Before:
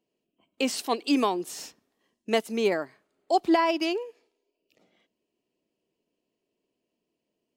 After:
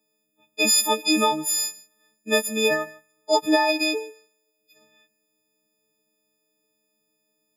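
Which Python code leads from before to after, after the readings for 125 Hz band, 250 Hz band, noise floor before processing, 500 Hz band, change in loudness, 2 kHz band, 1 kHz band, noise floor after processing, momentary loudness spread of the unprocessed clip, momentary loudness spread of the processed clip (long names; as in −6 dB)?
+3.5 dB, +1.0 dB, −83 dBFS, +3.0 dB, +5.5 dB, +9.0 dB, +2.5 dB, −74 dBFS, 18 LU, 12 LU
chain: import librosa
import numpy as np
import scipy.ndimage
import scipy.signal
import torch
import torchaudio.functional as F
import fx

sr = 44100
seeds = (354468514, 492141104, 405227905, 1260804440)

y = fx.freq_snap(x, sr, grid_st=6)
y = y + 10.0 ** (-21.5 / 20.0) * np.pad(y, (int(153 * sr / 1000.0), 0))[:len(y)]
y = y * librosa.db_to_amplitude(1.5)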